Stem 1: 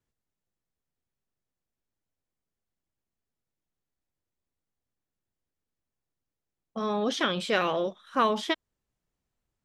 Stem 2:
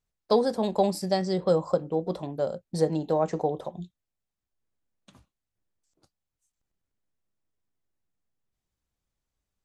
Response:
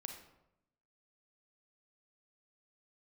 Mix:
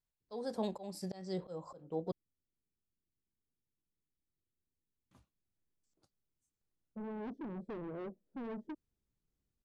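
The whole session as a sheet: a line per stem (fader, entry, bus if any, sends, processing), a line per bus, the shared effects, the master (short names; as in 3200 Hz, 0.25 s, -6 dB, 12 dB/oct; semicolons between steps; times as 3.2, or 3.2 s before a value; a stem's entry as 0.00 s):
-2.0 dB, 0.20 s, no send, inverse Chebyshev low-pass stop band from 1100 Hz, stop band 50 dB; soft clip -38 dBFS, distortion -7 dB; vibrato 2.2 Hz 70 cents
-9.0 dB, 0.00 s, muted 2.12–5.11, no send, auto swell 0.284 s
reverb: off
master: dry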